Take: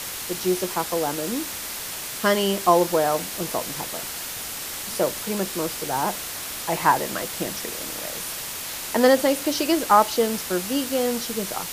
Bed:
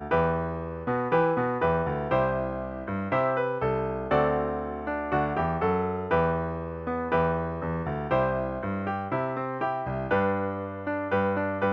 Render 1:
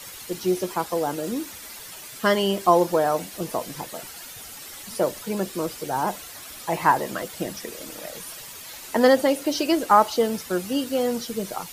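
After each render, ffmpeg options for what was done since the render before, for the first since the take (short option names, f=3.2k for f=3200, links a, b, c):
-af "afftdn=nr=11:nf=-33"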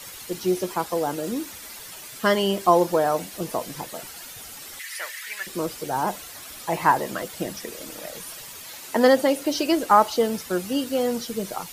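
-filter_complex "[0:a]asettb=1/sr,asplit=3[a][b][c];[a]atrim=end=4.794[d];[b]atrim=start=4.79:end=5.47,asetpts=PTS-STARTPTS,afade=t=in:d=0.004:c=qsin,afade=t=out:st=0.676:d=0.004:c=qsin,highpass=f=1.9k:t=q:w=5.8[e];[c]atrim=start=5.466[f];[d][e]acrossfade=d=0.004:c1=hsin:c2=qsin[g];[g][f]acrossfade=d=0.004:c1=qsin:c2=hsin,asettb=1/sr,asplit=3[h][i][j];[h]atrim=end=8.684[k];[i]atrim=start=8.68:end=9.37,asetpts=PTS-STARTPTS,afade=t=in:d=0.004:c=qsin,afade=t=out:st=0.686:d=0.004:c=qsin,highpass=92[l];[j]atrim=start=9.366[m];[k][l]acrossfade=d=0.004:c1=hsin:c2=qsin[n];[n][m]acrossfade=d=0.004:c1=qsin:c2=hsin"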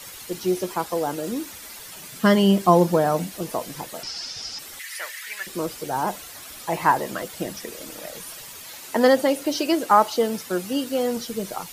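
-filter_complex "[0:a]asettb=1/sr,asplit=3[a][b][c];[a]atrim=end=1.954[d];[b]atrim=start=1.95:end=3.32,asetpts=PTS-STARTPTS,afade=t=in:d=0.004:c=qsin,afade=t=out:st=1.366:d=0.004:c=qsin,equalizer=f=180:t=o:w=1:g=11[e];[c]atrim=start=3.316[f];[d][e]acrossfade=d=0.004:c1=hsin:c2=qsin[g];[g][f]acrossfade=d=0.004:c1=qsin:c2=hsin,asettb=1/sr,asplit=3[h][i][j];[h]atrim=end=4.034[k];[i]atrim=start=4.03:end=4.59,asetpts=PTS-STARTPTS,afade=t=in:d=0.004:c=qsin,afade=t=out:st=0.556:d=0.004:c=qsin,lowpass=f=5.2k:t=q:w=9.2[l];[j]atrim=start=4.586[m];[k][l]acrossfade=d=0.004:c1=hsin:c2=qsin[n];[n][m]acrossfade=d=0.004:c1=qsin:c2=hsin,asettb=1/sr,asplit=3[o][p][q];[o]atrim=end=9.574[r];[p]atrim=start=9.57:end=11.17,asetpts=PTS-STARTPTS,afade=t=in:d=0.004:c=qsin,afade=t=out:st=1.596:d=0.004:c=qsin,highpass=110[s];[q]atrim=start=11.166[t];[r][s]acrossfade=d=0.004:c1=hsin:c2=qsin[u];[u][t]acrossfade=d=0.004:c1=qsin:c2=hsin"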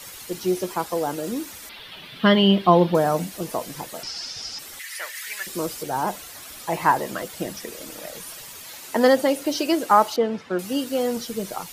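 -filter_complex "[0:a]asettb=1/sr,asplit=3[a][b][c];[a]atrim=end=1.694[d];[b]atrim=start=1.69:end=2.95,asetpts=PTS-STARTPTS,afade=t=in:d=0.004:c=qsin,afade=t=out:st=1.256:d=0.004:c=qsin,highshelf=f=5k:t=q:w=3:g=-13.5[e];[c]atrim=start=2.946[f];[d][e]acrossfade=d=0.004:c1=hsin:c2=qsin[g];[g][f]acrossfade=d=0.004:c1=qsin:c2=hsin,asettb=1/sr,asplit=3[h][i][j];[h]atrim=end=5.154[k];[i]atrim=start=5.15:end=5.83,asetpts=PTS-STARTPTS,afade=t=in:d=0.004:c=qsin,afade=t=out:st=0.676:d=0.004:c=qsin,bass=f=250:g=0,treble=f=4k:g=4[l];[j]atrim=start=5.826[m];[k][l]acrossfade=d=0.004:c1=hsin:c2=qsin[n];[n][m]acrossfade=d=0.004:c1=qsin:c2=hsin,asettb=1/sr,asplit=3[o][p][q];[o]atrim=end=10.164[r];[p]atrim=start=10.16:end=10.59,asetpts=PTS-STARTPTS,afade=t=in:d=0.004:c=qsin,afade=t=out:st=0.426:d=0.004:c=qsin,lowpass=2.7k[s];[q]atrim=start=10.586[t];[r][s]acrossfade=d=0.004:c1=hsin:c2=qsin[u];[u][t]acrossfade=d=0.004:c1=qsin:c2=hsin"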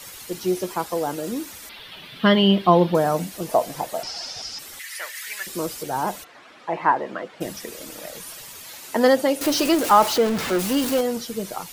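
-filter_complex "[0:a]asettb=1/sr,asplit=3[a][b][c];[a]atrim=end=3.494[d];[b]atrim=start=3.49:end=4.42,asetpts=PTS-STARTPTS,afade=t=in:d=0.004:c=qsin,afade=t=out:st=0.926:d=0.004:c=qsin,equalizer=f=690:w=1.8:g=11.5[e];[c]atrim=start=4.416[f];[d][e]acrossfade=d=0.004:c1=hsin:c2=qsin[g];[g][f]acrossfade=d=0.004:c1=qsin:c2=hsin,asplit=3[h][i][j];[h]afade=t=out:st=6.23:d=0.02[k];[i]highpass=220,lowpass=2.3k,afade=t=in:st=6.23:d=0.02,afade=t=out:st=7.4:d=0.02[l];[j]afade=t=in:st=7.4:d=0.02[m];[k][l][m]amix=inputs=3:normalize=0,asettb=1/sr,asplit=3[n][o][p];[n]atrim=end=9.414[q];[o]atrim=start=9.41:end=11.01,asetpts=PTS-STARTPTS,afade=t=in:d=0.004:c=qsin,afade=t=out:st=1.596:d=0.004:c=qsin,aeval=exprs='val(0)+0.5*0.075*sgn(val(0))':c=same[r];[p]atrim=start=11.006[s];[q][r]acrossfade=d=0.004:c1=hsin:c2=qsin[t];[t][s]acrossfade=d=0.004:c1=qsin:c2=hsin"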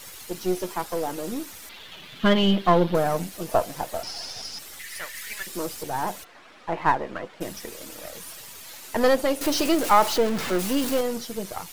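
-af "aeval=exprs='if(lt(val(0),0),0.447*val(0),val(0))':c=same"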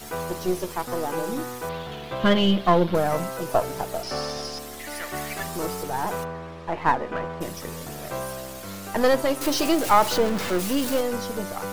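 -filter_complex "[1:a]volume=-7.5dB[a];[0:a][a]amix=inputs=2:normalize=0"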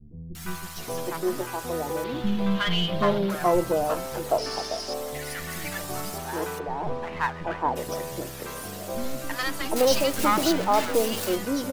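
-filter_complex "[0:a]acrossover=split=220|1000[a][b][c];[c]adelay=350[d];[b]adelay=770[e];[a][e][d]amix=inputs=3:normalize=0"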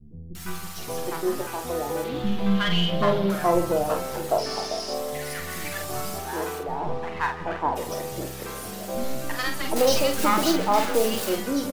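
-filter_complex "[0:a]asplit=2[a][b];[b]adelay=46,volume=-6dB[c];[a][c]amix=inputs=2:normalize=0,asplit=2[d][e];[e]adelay=163.3,volume=-18dB,highshelf=f=4k:g=-3.67[f];[d][f]amix=inputs=2:normalize=0"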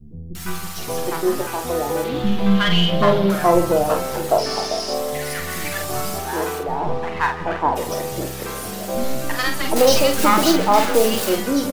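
-af "volume=6dB"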